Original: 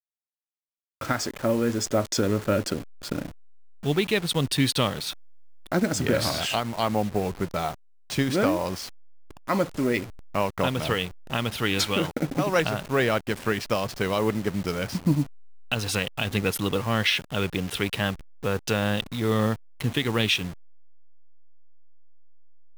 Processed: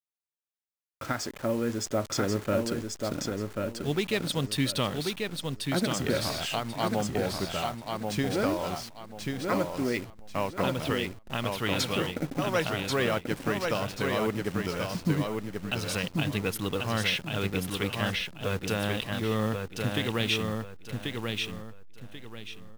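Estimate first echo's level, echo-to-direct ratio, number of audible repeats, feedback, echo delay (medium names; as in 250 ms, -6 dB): -4.0 dB, -3.5 dB, 3, 28%, 1087 ms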